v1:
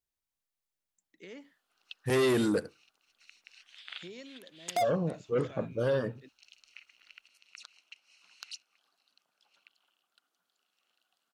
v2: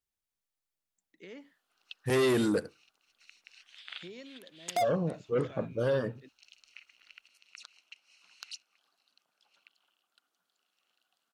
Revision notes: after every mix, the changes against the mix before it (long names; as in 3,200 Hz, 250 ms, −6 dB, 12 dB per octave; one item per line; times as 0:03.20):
first voice: add high-frequency loss of the air 60 metres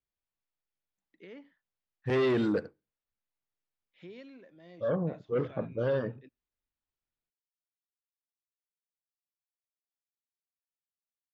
background: muted
master: add high-frequency loss of the air 210 metres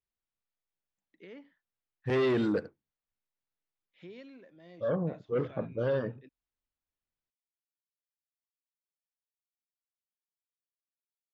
reverb: off